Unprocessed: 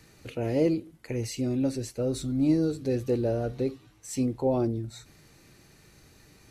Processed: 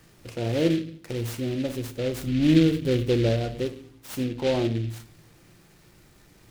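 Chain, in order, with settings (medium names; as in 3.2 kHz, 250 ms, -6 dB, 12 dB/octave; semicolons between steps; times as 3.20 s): 2.27–3.29 s: bass shelf 380 Hz +6 dB; reverberation RT60 0.55 s, pre-delay 6 ms, DRR 7.5 dB; delay time shaken by noise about 2.7 kHz, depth 0.067 ms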